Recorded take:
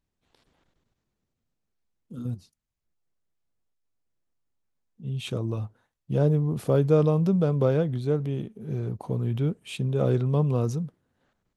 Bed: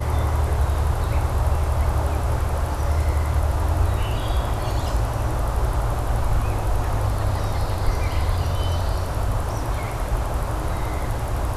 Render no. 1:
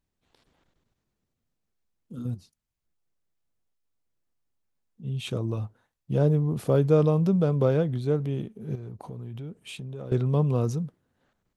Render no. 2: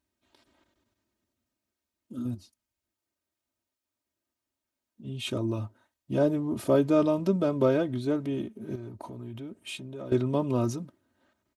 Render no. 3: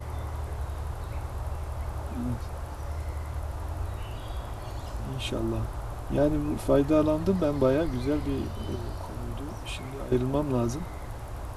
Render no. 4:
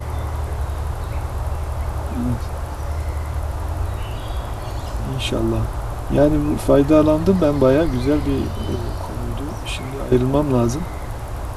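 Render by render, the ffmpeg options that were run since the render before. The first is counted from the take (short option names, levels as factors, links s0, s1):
-filter_complex "[0:a]asettb=1/sr,asplit=3[s0][s1][s2];[s0]atrim=end=8.754[s3];[s1]atrim=start=8.75:end=10.12,asetpts=PTS-STARTPTS,afade=t=in:d=0.004:c=qsin,afade=t=out:st=1.366:d=0.004:c=qsin,acompressor=threshold=0.0158:ratio=4:attack=3.2:release=140:knee=1:detection=peak[s4];[s2]atrim=start=10.116[s5];[s3][s4]acrossfade=d=0.004:c1=hsin:c2=qsin[s6];[s6][s5]acrossfade=d=0.004:c1=qsin:c2=hsin"
-af "highpass=89,aecho=1:1:3.2:0.8"
-filter_complex "[1:a]volume=0.224[s0];[0:a][s0]amix=inputs=2:normalize=0"
-af "volume=2.99,alimiter=limit=0.708:level=0:latency=1"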